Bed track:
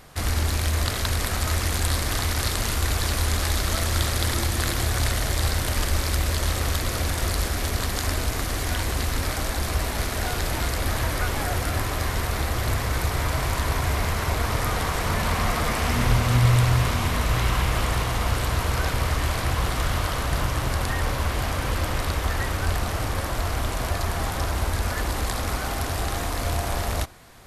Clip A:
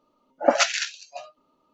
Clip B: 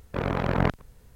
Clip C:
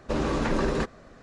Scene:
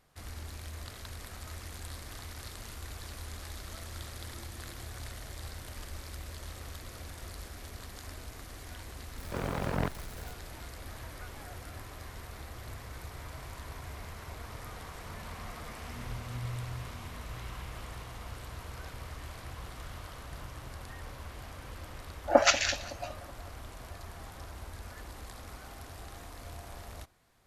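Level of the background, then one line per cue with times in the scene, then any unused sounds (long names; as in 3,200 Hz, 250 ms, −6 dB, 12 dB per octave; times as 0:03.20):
bed track −19.5 dB
0:09.18: mix in B −9 dB + converter with a step at zero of −32 dBFS
0:21.87: mix in A −3 dB + feedback echo with a low-pass in the loop 187 ms, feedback 64%, low-pass 1,800 Hz, level −15.5 dB
not used: C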